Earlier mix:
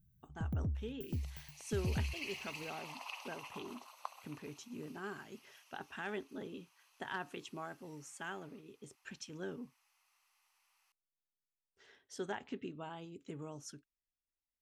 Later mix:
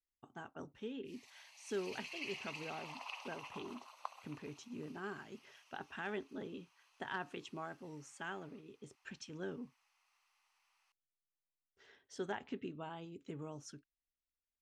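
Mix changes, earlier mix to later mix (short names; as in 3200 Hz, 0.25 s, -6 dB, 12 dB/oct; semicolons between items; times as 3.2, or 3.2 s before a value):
first sound: muted; master: add air absorption 53 m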